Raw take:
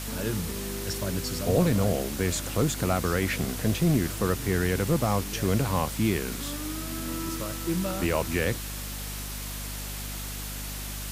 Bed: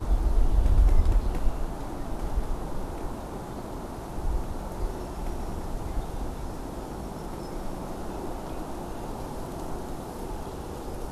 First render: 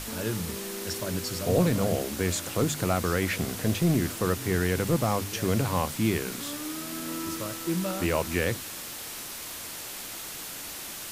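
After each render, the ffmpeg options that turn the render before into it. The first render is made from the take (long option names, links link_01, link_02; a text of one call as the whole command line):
ffmpeg -i in.wav -af "bandreject=frequency=50:width_type=h:width=6,bandreject=frequency=100:width_type=h:width=6,bandreject=frequency=150:width_type=h:width=6,bandreject=frequency=200:width_type=h:width=6,bandreject=frequency=250:width_type=h:width=6" out.wav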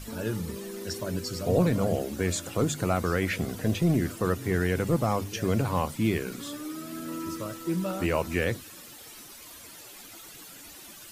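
ffmpeg -i in.wav -af "afftdn=noise_reduction=12:noise_floor=-39" out.wav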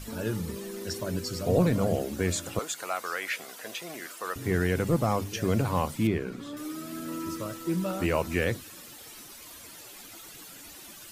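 ffmpeg -i in.wav -filter_complex "[0:a]asettb=1/sr,asplit=3[link_01][link_02][link_03];[link_01]atrim=end=2.594[link_04];[link_02]atrim=start=2.59:end=4.36,asetpts=PTS-STARTPTS,afade=type=in:duration=0.004:curve=qsin,afade=type=out:start_time=1.766:duration=0.004:curve=qsin,highpass=830[link_05];[link_03]atrim=start=4.356[link_06];[link_04][link_05]acrossfade=duration=0.004:curve1=hsin:curve2=qsin[link_07];[link_07][link_06]acrossfade=duration=0.004:curve1=qsin:curve2=hsin,asettb=1/sr,asplit=3[link_08][link_09][link_10];[link_08]atrim=end=6.074[link_11];[link_09]atrim=start=6.07:end=6.57,asetpts=PTS-STARTPTS,afade=type=in:duration=0.004:curve=qsin,afade=type=out:start_time=0.496:duration=0.004:curve=qsin,lowpass=frequency=1700:poles=1[link_12];[link_10]atrim=start=6.566[link_13];[link_11][link_12]acrossfade=duration=0.004:curve1=hsin:curve2=qsin[link_14];[link_14][link_13]acrossfade=duration=0.004:curve1=qsin:curve2=hsin" out.wav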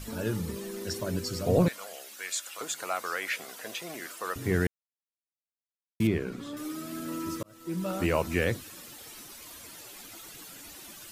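ffmpeg -i in.wav -filter_complex "[0:a]asettb=1/sr,asplit=3[link_01][link_02][link_03];[link_01]atrim=end=1.684[link_04];[link_02]atrim=start=1.68:end=2.61,asetpts=PTS-STARTPTS,afade=type=in:duration=0.004:curve=qsin,afade=type=out:start_time=0.926:duration=0.004:curve=qsin,highpass=1500[link_05];[link_03]atrim=start=2.606[link_06];[link_04][link_05]acrossfade=duration=0.004:curve1=hsin:curve2=qsin[link_07];[link_07][link_06]acrossfade=duration=0.004:curve1=qsin:curve2=hsin,asplit=4[link_08][link_09][link_10][link_11];[link_08]atrim=end=4.67,asetpts=PTS-STARTPTS,afade=type=out:start_time=4.666:duration=0.004:curve=hsin[link_12];[link_09]atrim=start=4.67:end=6,asetpts=PTS-STARTPTS,volume=0[link_13];[link_10]atrim=start=6:end=7.43,asetpts=PTS-STARTPTS,afade=type=in:duration=0.004:curve=hsin,afade=type=out:start_time=1.426:duration=0.004:curve=hsin[link_14];[link_11]atrim=start=7.43,asetpts=PTS-STARTPTS,afade=type=in:duration=0.53[link_15];[link_12][link_13][link_14][link_15]concat=n=4:v=0:a=1" out.wav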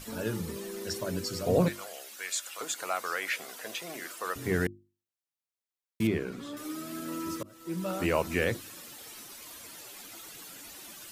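ffmpeg -i in.wav -af "lowshelf=frequency=110:gain=-7,bandreject=frequency=50:width_type=h:width=6,bandreject=frequency=100:width_type=h:width=6,bandreject=frequency=150:width_type=h:width=6,bandreject=frequency=200:width_type=h:width=6,bandreject=frequency=250:width_type=h:width=6,bandreject=frequency=300:width_type=h:width=6,bandreject=frequency=350:width_type=h:width=6" out.wav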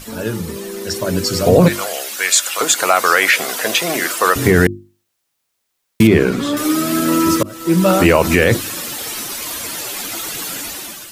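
ffmpeg -i in.wav -af "dynaudnorm=framelen=880:gausssize=3:maxgain=12dB,alimiter=level_in=10dB:limit=-1dB:release=50:level=0:latency=1" out.wav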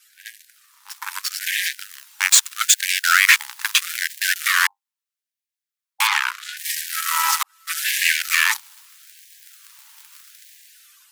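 ffmpeg -i in.wav -af "aeval=exprs='0.944*(cos(1*acos(clip(val(0)/0.944,-1,1)))-cos(1*PI/2))+0.0237*(cos(3*acos(clip(val(0)/0.944,-1,1)))-cos(3*PI/2))+0.133*(cos(5*acos(clip(val(0)/0.944,-1,1)))-cos(5*PI/2))+0.237*(cos(7*acos(clip(val(0)/0.944,-1,1)))-cos(7*PI/2))':channel_layout=same,afftfilt=real='re*gte(b*sr/1024,780*pow(1600/780,0.5+0.5*sin(2*PI*0.78*pts/sr)))':imag='im*gte(b*sr/1024,780*pow(1600/780,0.5+0.5*sin(2*PI*0.78*pts/sr)))':win_size=1024:overlap=0.75" out.wav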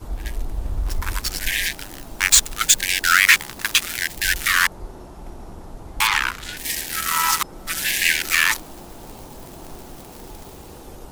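ffmpeg -i in.wav -i bed.wav -filter_complex "[1:a]volume=-4.5dB[link_01];[0:a][link_01]amix=inputs=2:normalize=0" out.wav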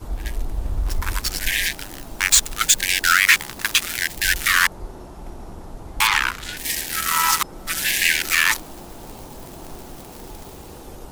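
ffmpeg -i in.wav -af "volume=1dB,alimiter=limit=-3dB:level=0:latency=1" out.wav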